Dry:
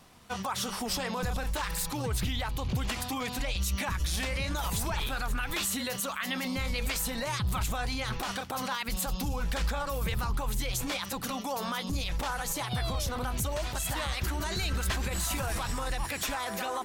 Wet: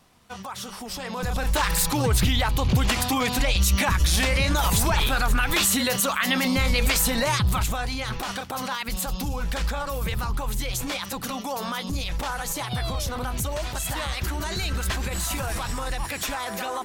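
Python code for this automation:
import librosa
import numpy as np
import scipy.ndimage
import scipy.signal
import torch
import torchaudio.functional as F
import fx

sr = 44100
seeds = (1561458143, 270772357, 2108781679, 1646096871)

y = fx.gain(x, sr, db=fx.line((0.92, -2.5), (1.58, 10.0), (7.26, 10.0), (7.88, 3.5)))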